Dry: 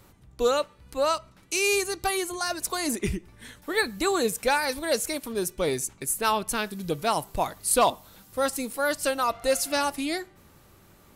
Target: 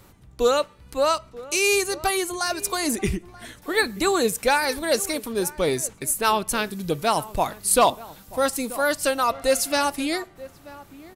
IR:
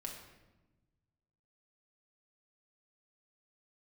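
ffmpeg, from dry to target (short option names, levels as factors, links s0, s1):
-filter_complex "[0:a]asplit=2[s0][s1];[s1]adelay=932.9,volume=0.126,highshelf=f=4000:g=-21[s2];[s0][s2]amix=inputs=2:normalize=0,volume=1.5"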